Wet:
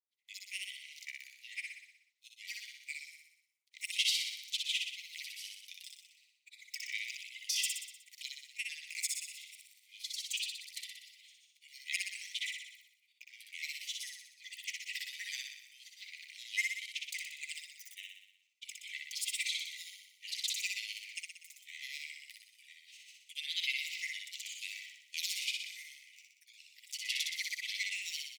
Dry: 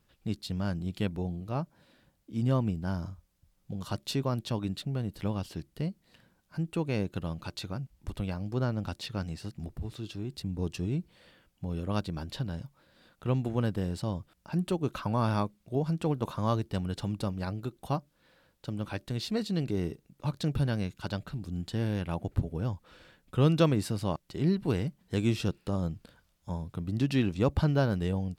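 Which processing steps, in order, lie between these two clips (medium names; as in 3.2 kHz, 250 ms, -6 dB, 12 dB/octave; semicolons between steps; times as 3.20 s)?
expander -52 dBFS; granulator, pitch spread up and down by 12 st; Chebyshev high-pass 2 kHz, order 8; on a send: feedback delay 61 ms, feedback 59%, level -3.5 dB; on the sum: trim +6.5 dB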